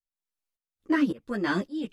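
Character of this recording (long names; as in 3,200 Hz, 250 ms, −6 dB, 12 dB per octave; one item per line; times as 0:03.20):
tremolo saw up 1.8 Hz, depth 95%
a shimmering, thickened sound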